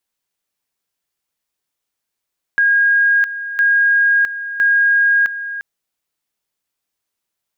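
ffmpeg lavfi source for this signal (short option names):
-f lavfi -i "aevalsrc='pow(10,(-10-12.5*gte(mod(t,1.01),0.66))/20)*sin(2*PI*1630*t)':d=3.03:s=44100"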